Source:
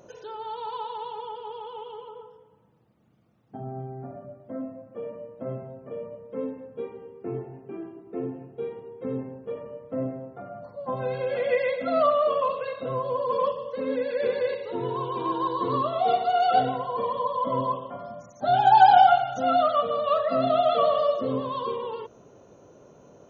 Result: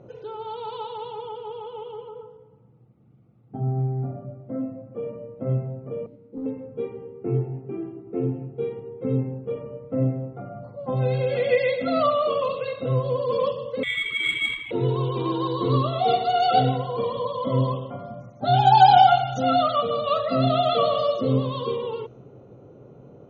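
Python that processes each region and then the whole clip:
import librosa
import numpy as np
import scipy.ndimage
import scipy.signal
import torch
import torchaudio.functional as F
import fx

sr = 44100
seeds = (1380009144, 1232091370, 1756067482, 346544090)

y = fx.chain(x, sr, fx.formant_cascade(vowel='u'),
    fx.leveller(passes=1), at=(6.06, 6.46))
y = fx.chain(y, sr, fx.freq_invert(carrier_hz=3800),
    fx.resample_linear(factor=8), at=(13.83, 14.71))
y = fx.notch(y, sr, hz=1800.0, q=16.0)
y = fx.env_lowpass(y, sr, base_hz=1500.0, full_db=-19.5)
y = fx.graphic_eq_31(y, sr, hz=(125, 630, 1000, 1600, 4000), db=(10, -7, -10, -9, 4))
y = F.gain(torch.from_numpy(y), 5.5).numpy()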